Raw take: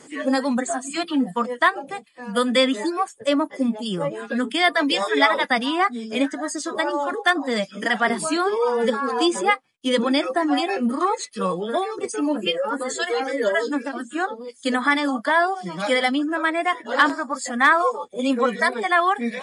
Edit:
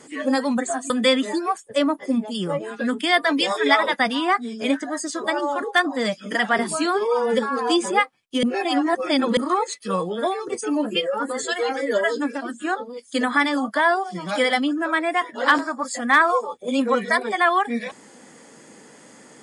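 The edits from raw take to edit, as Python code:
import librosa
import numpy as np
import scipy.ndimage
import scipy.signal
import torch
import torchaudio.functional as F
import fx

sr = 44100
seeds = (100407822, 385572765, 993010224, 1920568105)

y = fx.edit(x, sr, fx.cut(start_s=0.9, length_s=1.51),
    fx.reverse_span(start_s=9.94, length_s=0.94), tone=tone)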